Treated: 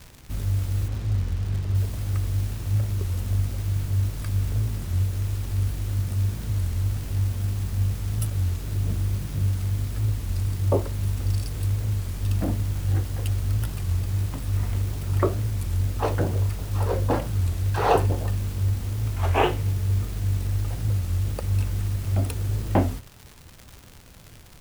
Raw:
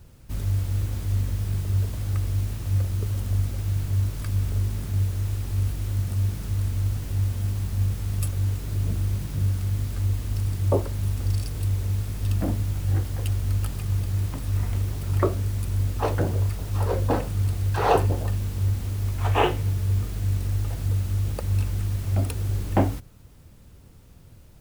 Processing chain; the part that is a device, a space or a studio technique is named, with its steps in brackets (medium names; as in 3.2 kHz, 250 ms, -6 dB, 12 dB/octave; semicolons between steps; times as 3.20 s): 0.88–1.75 s: distance through air 94 m; warped LP (warped record 33 1/3 rpm, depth 160 cents; crackle 150 per s -33 dBFS; pink noise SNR 31 dB)